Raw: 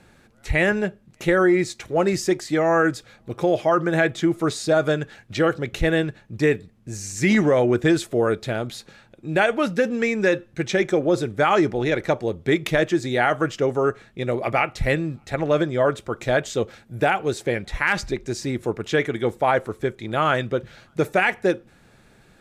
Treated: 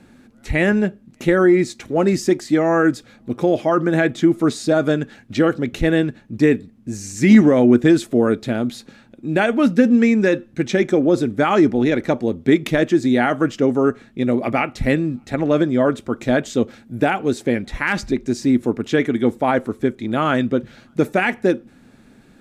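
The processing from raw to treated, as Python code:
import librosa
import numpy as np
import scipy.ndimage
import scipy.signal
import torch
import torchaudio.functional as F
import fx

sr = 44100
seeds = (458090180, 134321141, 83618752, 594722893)

y = fx.peak_eq(x, sr, hz=250.0, db=14.5, octaves=0.63)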